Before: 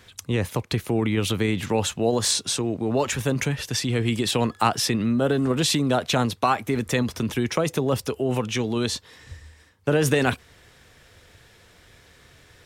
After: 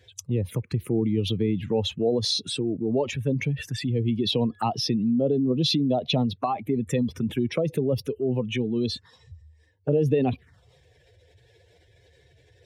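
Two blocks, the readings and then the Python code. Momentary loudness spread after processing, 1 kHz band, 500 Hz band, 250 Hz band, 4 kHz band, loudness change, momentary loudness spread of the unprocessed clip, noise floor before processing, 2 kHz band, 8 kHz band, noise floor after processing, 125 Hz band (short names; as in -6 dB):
6 LU, -6.0 dB, -1.5 dB, -0.5 dB, -2.0 dB, -2.0 dB, 5 LU, -54 dBFS, -10.0 dB, -12.5 dB, -60 dBFS, -1.0 dB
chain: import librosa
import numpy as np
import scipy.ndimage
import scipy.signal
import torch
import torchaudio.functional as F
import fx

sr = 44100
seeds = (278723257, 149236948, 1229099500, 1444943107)

y = fx.spec_expand(x, sr, power=1.8)
y = fx.env_phaser(y, sr, low_hz=200.0, high_hz=1500.0, full_db=-21.0)
y = scipy.signal.sosfilt(scipy.signal.butter(2, 88.0, 'highpass', fs=sr, output='sos'), y)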